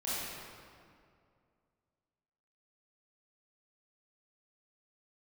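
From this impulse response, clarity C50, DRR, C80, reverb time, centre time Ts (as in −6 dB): −5.5 dB, −11.0 dB, −2.5 dB, 2.3 s, 160 ms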